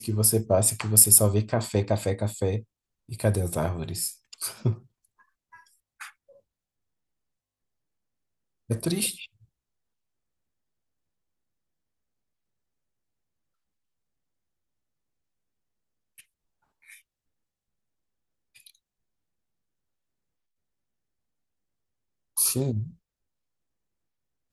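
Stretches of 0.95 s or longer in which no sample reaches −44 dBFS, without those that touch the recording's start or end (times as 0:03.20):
0:06.10–0:08.70
0:09.26–0:16.18
0:16.98–0:18.56
0:18.70–0:22.37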